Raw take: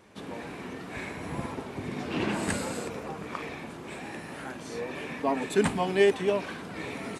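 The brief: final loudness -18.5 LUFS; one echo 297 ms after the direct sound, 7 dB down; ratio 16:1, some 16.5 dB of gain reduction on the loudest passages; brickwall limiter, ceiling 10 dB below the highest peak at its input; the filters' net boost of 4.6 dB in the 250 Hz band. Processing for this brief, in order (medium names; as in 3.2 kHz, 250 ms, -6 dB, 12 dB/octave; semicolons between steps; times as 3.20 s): peaking EQ 250 Hz +6 dB; compression 16:1, threshold -31 dBFS; peak limiter -29 dBFS; delay 297 ms -7 dB; trim +19 dB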